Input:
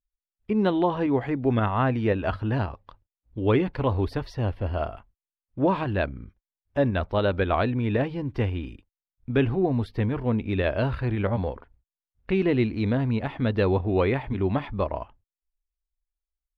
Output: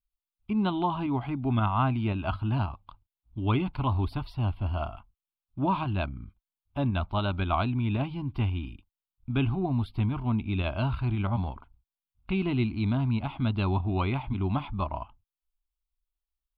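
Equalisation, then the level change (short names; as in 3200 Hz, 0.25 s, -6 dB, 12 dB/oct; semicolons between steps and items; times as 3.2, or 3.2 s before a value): fixed phaser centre 1800 Hz, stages 6; 0.0 dB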